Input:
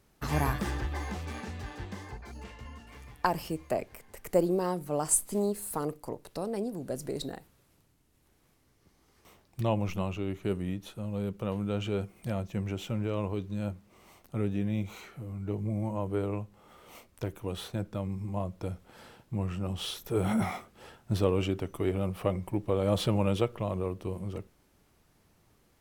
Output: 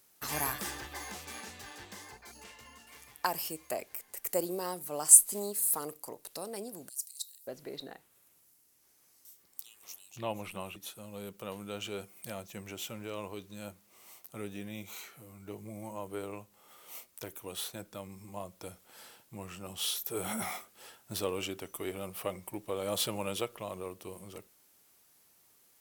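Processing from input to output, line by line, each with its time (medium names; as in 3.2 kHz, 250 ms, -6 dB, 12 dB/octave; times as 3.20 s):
6.89–10.76 s: bands offset in time highs, lows 580 ms, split 4 kHz
whole clip: RIAA curve recording; trim -4 dB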